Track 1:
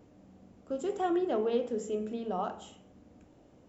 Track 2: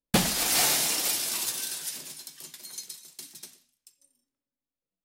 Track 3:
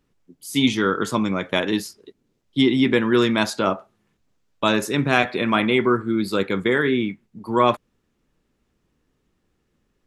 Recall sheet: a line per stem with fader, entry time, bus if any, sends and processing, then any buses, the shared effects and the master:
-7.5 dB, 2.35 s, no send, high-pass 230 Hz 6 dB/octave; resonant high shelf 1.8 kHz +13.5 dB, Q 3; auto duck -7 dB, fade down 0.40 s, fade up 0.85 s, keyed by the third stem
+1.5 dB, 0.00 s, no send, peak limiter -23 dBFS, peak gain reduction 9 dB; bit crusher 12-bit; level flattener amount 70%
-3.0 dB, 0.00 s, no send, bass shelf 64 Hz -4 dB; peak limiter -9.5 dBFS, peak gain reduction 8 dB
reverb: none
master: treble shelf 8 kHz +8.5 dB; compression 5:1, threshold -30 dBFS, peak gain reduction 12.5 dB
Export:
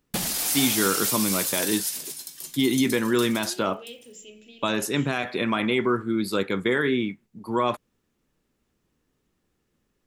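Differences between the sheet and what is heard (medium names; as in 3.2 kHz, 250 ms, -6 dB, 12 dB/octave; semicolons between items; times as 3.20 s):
stem 1: missing high-pass 230 Hz 6 dB/octave; stem 2: missing level flattener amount 70%; master: missing compression 5:1, threshold -30 dBFS, peak gain reduction 12.5 dB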